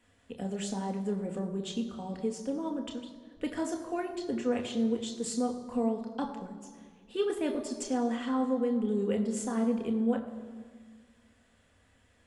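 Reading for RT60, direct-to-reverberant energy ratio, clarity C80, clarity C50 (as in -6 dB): 1.6 s, 3.0 dB, 10.5 dB, 9.5 dB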